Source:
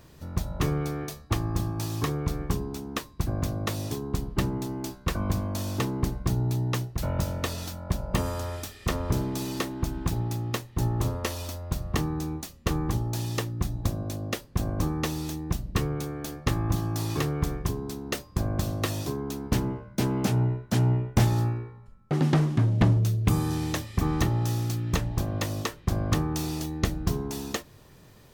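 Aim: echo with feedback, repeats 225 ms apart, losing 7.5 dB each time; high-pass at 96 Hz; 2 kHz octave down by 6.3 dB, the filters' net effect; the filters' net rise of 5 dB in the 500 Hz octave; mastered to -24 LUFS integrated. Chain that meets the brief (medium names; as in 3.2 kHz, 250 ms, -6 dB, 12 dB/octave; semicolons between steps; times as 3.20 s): high-pass 96 Hz; peaking EQ 500 Hz +7 dB; peaking EQ 2 kHz -8.5 dB; feedback delay 225 ms, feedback 42%, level -7.5 dB; trim +4 dB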